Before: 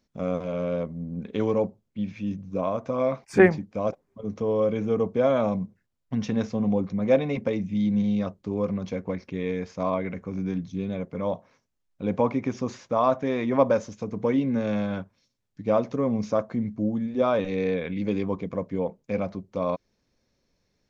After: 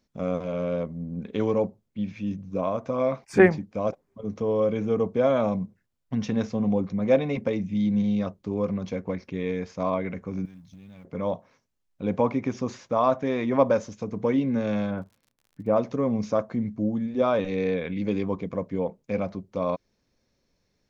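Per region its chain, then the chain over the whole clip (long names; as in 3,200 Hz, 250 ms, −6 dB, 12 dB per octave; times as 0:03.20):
0:10.45–0:11.05: mu-law and A-law mismatch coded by A + parametric band 430 Hz −14.5 dB 1.2 octaves + downward compressor 8 to 1, threshold −43 dBFS
0:14.90–0:15.75: low-pass filter 1,600 Hz + surface crackle 54 per second −47 dBFS
whole clip: no processing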